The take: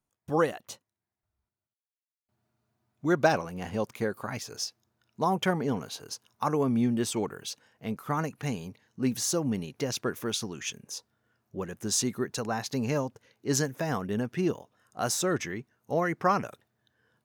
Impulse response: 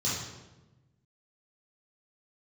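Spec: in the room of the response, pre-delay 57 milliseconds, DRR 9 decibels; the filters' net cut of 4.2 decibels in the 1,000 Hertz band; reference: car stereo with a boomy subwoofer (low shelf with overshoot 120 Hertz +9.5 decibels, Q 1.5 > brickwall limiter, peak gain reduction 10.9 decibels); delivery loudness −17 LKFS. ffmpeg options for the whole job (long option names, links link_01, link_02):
-filter_complex "[0:a]equalizer=frequency=1000:width_type=o:gain=-5.5,asplit=2[link_01][link_02];[1:a]atrim=start_sample=2205,adelay=57[link_03];[link_02][link_03]afir=irnorm=-1:irlink=0,volume=-16.5dB[link_04];[link_01][link_04]amix=inputs=2:normalize=0,lowshelf=frequency=120:width_type=q:width=1.5:gain=9.5,volume=16dB,alimiter=limit=-7dB:level=0:latency=1"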